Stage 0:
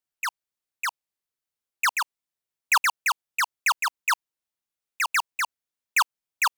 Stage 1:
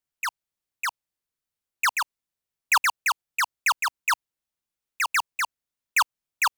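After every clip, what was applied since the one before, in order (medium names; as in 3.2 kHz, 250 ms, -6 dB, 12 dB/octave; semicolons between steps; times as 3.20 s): bass shelf 190 Hz +7 dB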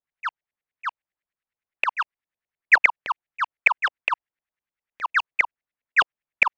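LFO low-pass saw up 9.8 Hz 570–2200 Hz; high-order bell 4.4 kHz +11.5 dB 2.9 oct; trim -4.5 dB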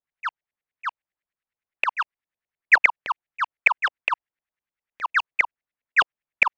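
no audible change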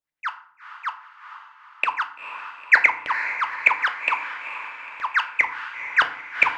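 echo that smears into a reverb 460 ms, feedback 53%, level -10 dB; FDN reverb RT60 0.57 s, low-frequency decay 1.5×, high-frequency decay 0.65×, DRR 6.5 dB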